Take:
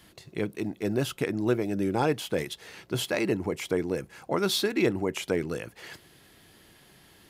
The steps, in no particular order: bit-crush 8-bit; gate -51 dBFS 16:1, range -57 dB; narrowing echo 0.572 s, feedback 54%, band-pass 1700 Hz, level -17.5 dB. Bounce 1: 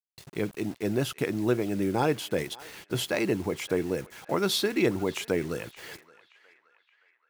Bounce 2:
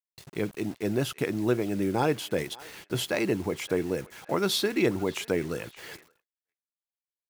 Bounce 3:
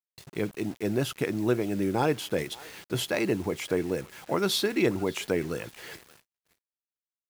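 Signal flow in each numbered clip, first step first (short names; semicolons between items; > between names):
bit-crush > gate > narrowing echo; bit-crush > narrowing echo > gate; narrowing echo > bit-crush > gate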